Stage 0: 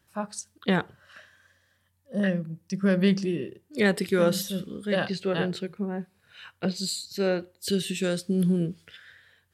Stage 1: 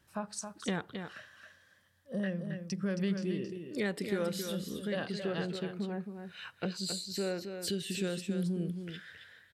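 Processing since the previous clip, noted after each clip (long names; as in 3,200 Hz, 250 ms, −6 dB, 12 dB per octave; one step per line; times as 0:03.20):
high-shelf EQ 11,000 Hz −4.5 dB
downward compressor 2.5 to 1, threshold −36 dBFS, peak gain reduction 12.5 dB
single-tap delay 270 ms −7.5 dB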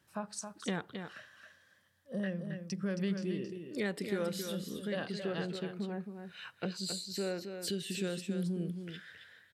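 high-pass filter 94 Hz
level −1.5 dB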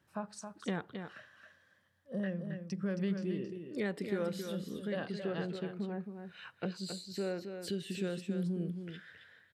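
high-shelf EQ 3,200 Hz −9 dB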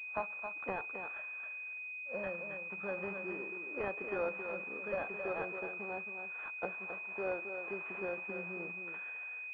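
variable-slope delta modulation 16 kbit/s
high-pass filter 790 Hz 12 dB per octave
switching amplifier with a slow clock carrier 2,500 Hz
level +9.5 dB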